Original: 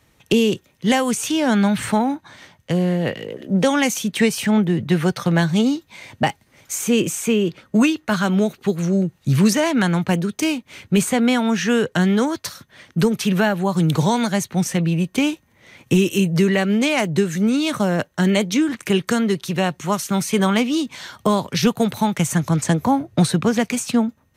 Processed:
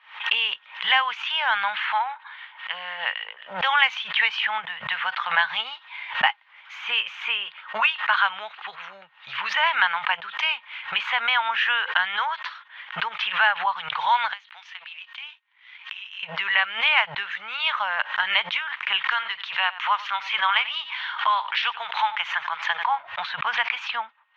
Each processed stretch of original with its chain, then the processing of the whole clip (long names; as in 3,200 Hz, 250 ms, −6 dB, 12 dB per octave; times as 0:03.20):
0:01.86–0:02.74: low-pass filter 4,600 Hz 24 dB per octave + low-shelf EQ 410 Hz −9.5 dB
0:14.33–0:16.23: meter weighting curve ITU-R 468 + downward compressor, threshold −30 dBFS + power curve on the samples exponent 1.4
0:19.04–0:22.99: low-shelf EQ 480 Hz −8 dB + upward compression, threshold −26 dBFS + single-tap delay 91 ms −18 dB
whole clip: elliptic band-pass filter 910–3,200 Hz, stop band 50 dB; background raised ahead of every attack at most 130 dB per second; level +5 dB